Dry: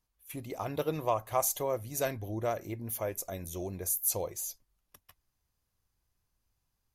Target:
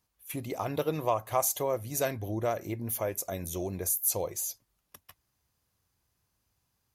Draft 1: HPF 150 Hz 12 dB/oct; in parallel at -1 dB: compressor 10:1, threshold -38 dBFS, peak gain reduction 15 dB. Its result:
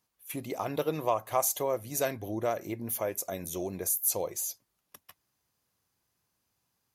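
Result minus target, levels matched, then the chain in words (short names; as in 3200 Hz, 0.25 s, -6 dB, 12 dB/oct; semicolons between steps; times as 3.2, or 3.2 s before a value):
125 Hz band -4.5 dB
HPF 72 Hz 12 dB/oct; in parallel at -1 dB: compressor 10:1, threshold -38 dBFS, peak gain reduction 15 dB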